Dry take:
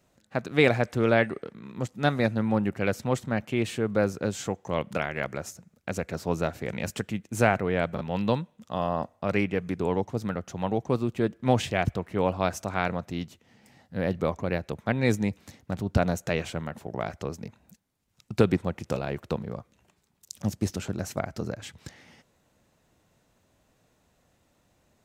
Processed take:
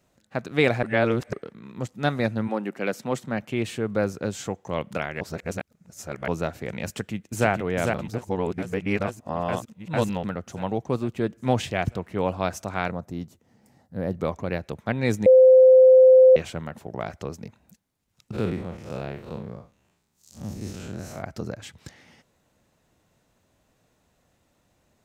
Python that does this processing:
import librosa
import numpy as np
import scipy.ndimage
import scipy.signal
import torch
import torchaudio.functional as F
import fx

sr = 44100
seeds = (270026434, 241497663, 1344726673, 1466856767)

y = fx.highpass(x, sr, hz=fx.line((2.47, 270.0), (3.4, 110.0)), slope=24, at=(2.47, 3.4), fade=0.02)
y = fx.echo_throw(y, sr, start_s=6.87, length_s=0.61, ms=450, feedback_pct=70, wet_db=-4.0)
y = fx.peak_eq(y, sr, hz=2800.0, db=-12.0, octaves=1.8, at=(12.91, 14.21))
y = fx.spec_blur(y, sr, span_ms=118.0, at=(18.32, 21.21), fade=0.02)
y = fx.edit(y, sr, fx.reverse_span(start_s=0.83, length_s=0.5),
    fx.reverse_span(start_s=5.21, length_s=1.07),
    fx.reverse_span(start_s=8.08, length_s=2.16),
    fx.bleep(start_s=15.26, length_s=1.1, hz=517.0, db=-9.0), tone=tone)